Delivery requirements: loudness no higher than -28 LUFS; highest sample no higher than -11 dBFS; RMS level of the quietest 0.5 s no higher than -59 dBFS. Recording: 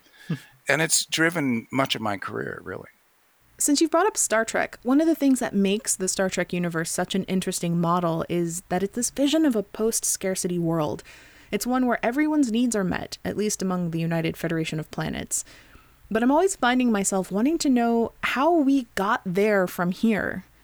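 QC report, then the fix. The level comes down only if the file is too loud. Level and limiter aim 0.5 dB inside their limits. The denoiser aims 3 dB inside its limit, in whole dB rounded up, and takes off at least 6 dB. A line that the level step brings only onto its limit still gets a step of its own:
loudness -24.0 LUFS: fail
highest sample -5.0 dBFS: fail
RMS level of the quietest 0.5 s -62 dBFS: OK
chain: gain -4.5 dB; limiter -11.5 dBFS

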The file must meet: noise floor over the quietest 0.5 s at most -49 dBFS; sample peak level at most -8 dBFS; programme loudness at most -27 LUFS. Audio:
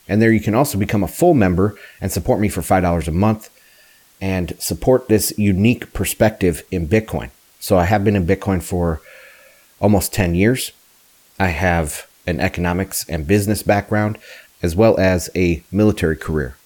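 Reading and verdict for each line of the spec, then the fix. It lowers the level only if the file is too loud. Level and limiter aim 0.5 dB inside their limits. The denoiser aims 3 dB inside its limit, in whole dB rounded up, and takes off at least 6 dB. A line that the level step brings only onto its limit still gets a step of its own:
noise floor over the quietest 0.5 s -53 dBFS: OK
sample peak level -3.5 dBFS: fail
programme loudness -18.0 LUFS: fail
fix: gain -9.5 dB

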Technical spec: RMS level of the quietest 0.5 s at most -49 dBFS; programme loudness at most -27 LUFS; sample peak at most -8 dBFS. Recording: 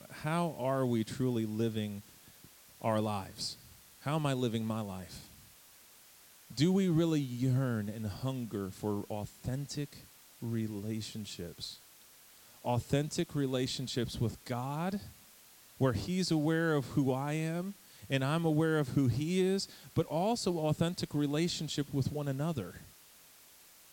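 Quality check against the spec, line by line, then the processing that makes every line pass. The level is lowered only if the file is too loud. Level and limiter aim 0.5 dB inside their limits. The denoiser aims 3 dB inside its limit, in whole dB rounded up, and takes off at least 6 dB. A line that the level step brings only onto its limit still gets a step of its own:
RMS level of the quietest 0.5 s -59 dBFS: OK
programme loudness -34.0 LUFS: OK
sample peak -16.0 dBFS: OK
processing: none

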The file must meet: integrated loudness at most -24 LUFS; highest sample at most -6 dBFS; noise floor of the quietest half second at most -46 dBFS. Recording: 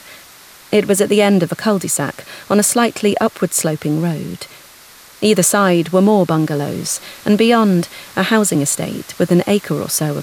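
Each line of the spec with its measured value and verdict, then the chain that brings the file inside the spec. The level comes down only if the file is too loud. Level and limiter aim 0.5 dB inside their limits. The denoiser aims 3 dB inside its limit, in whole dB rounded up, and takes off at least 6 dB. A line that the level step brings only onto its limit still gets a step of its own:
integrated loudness -15.5 LUFS: fail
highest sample -2.0 dBFS: fail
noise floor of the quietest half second -42 dBFS: fail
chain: gain -9 dB

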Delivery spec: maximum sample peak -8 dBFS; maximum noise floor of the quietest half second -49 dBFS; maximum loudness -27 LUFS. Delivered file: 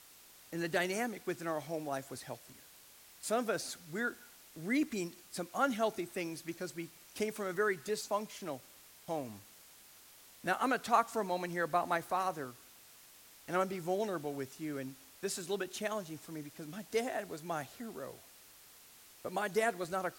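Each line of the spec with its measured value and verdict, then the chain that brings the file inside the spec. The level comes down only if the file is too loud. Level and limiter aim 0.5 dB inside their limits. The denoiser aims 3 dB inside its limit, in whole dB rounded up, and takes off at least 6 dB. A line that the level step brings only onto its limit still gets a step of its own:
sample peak -15.0 dBFS: OK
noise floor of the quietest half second -59 dBFS: OK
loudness -37.0 LUFS: OK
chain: none

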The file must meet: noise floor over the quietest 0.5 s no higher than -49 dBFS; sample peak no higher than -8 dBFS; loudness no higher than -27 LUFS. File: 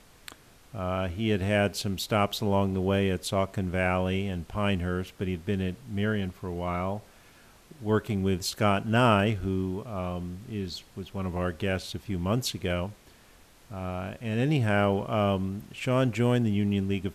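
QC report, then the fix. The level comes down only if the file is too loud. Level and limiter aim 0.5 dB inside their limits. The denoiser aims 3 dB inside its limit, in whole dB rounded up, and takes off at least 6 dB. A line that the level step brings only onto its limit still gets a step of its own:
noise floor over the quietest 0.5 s -56 dBFS: OK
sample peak -9.0 dBFS: OK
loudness -28.5 LUFS: OK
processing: none

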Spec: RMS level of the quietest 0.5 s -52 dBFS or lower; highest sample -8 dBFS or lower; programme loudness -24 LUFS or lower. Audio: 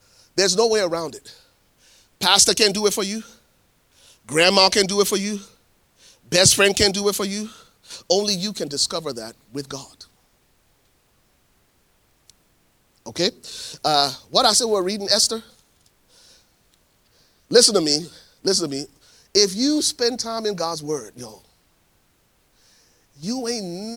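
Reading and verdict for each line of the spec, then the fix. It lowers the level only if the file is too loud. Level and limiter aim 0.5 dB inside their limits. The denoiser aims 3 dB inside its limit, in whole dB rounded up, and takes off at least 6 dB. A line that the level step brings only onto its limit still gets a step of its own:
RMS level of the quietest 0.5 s -62 dBFS: OK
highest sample -1.5 dBFS: fail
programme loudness -19.0 LUFS: fail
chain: gain -5.5 dB; limiter -8.5 dBFS

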